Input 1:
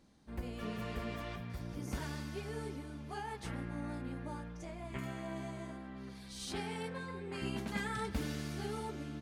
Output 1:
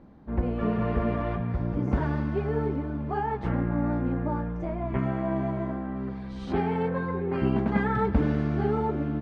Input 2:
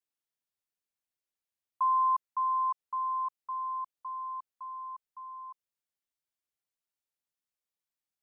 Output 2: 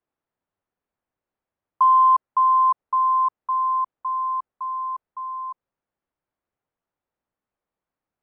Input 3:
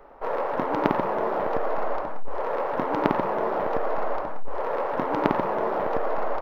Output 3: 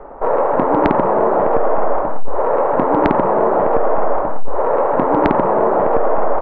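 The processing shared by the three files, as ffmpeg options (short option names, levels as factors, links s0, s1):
-filter_complex "[0:a]lowpass=1200,asplit=2[s0][s1];[s1]acompressor=threshold=0.0282:ratio=6,volume=0.75[s2];[s0][s2]amix=inputs=2:normalize=0,aeval=exprs='0.841*sin(PI/2*2*val(0)/0.841)':c=same"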